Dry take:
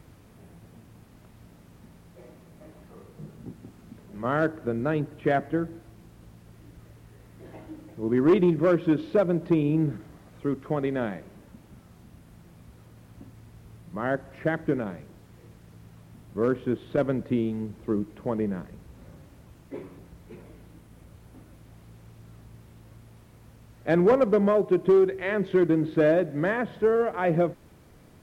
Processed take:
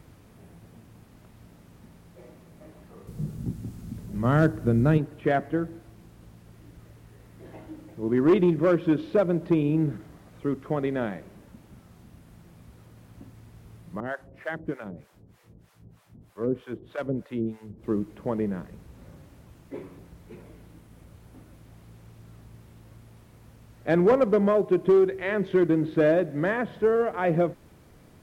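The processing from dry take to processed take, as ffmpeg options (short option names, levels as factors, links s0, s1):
-filter_complex "[0:a]asettb=1/sr,asplit=3[s0][s1][s2];[s0]atrim=end=3.074[s3];[s1]atrim=start=3.07:end=4.98,asetpts=PTS-STARTPTS,afade=t=in:d=0.004:c=qsin,afade=t=out:st=1.906:d=0.004:c=qsin,bass=f=250:g=13,treble=f=4000:g=8[s4];[s2]atrim=start=4.976[s5];[s3][s4]acrossfade=d=0.004:c1=hsin:c2=qsin[s6];[s6][s5]acrossfade=d=0.004:c1=qsin:c2=hsin,asettb=1/sr,asplit=3[s7][s8][s9];[s7]atrim=end=14.004[s10];[s8]atrim=start=14:end=17.84,asetpts=PTS-STARTPTS,afade=t=in:d=0.004:c=qsin,afade=t=out:st=3.836:d=0.004:c=qsin,acrossover=split=620[s11][s12];[s11]aeval=exprs='val(0)*(1-1/2+1/2*cos(2*PI*3.2*n/s))':c=same[s13];[s12]aeval=exprs='val(0)*(1-1/2-1/2*cos(2*PI*3.2*n/s))':c=same[s14];[s13][s14]amix=inputs=2:normalize=0[s15];[s9]atrim=start=17.836[s16];[s10][s15]acrossfade=d=0.004:c1=hsin:c2=qsin[s17];[s17][s16]acrossfade=d=0.004:c1=qsin:c2=hsin"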